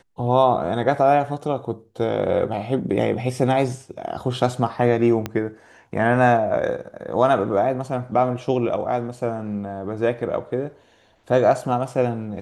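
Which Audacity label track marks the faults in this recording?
5.260000	5.260000	click −11 dBFS

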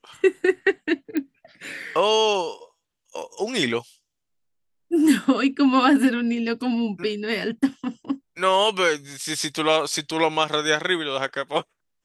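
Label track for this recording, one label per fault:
1.170000	1.170000	click −13 dBFS

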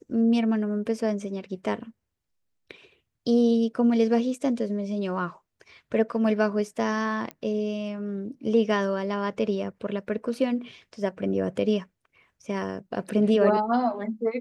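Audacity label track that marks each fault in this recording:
7.310000	7.310000	click −20 dBFS

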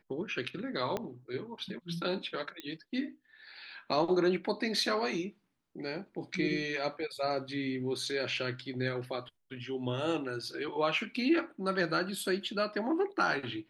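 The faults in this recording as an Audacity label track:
0.970000	0.970000	click −19 dBFS
2.600000	2.600000	click −25 dBFS

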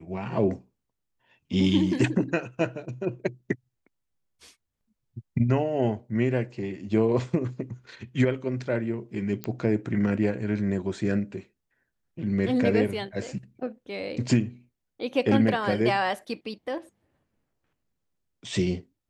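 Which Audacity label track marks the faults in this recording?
9.440000	9.440000	click −16 dBFS

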